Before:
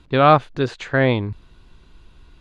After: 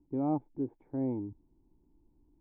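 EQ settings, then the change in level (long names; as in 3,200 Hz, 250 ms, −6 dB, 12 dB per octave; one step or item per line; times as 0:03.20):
formant resonators in series u
−5.5 dB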